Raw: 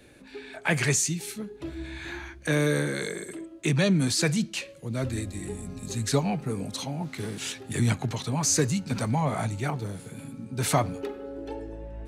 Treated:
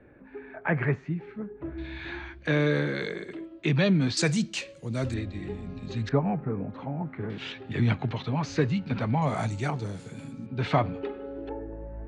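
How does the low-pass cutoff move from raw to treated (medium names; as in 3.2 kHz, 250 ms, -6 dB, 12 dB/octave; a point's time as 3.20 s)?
low-pass 24 dB/octave
1.8 kHz
from 1.78 s 4.1 kHz
from 4.17 s 8 kHz
from 5.14 s 3.9 kHz
from 6.09 s 1.8 kHz
from 7.30 s 3.5 kHz
from 9.22 s 7.5 kHz
from 10.46 s 3.5 kHz
from 11.49 s 1.8 kHz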